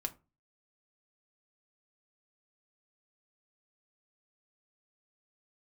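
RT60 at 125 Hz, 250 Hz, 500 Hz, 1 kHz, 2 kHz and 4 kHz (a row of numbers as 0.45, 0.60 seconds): 0.45, 0.40, 0.30, 0.30, 0.20, 0.15 seconds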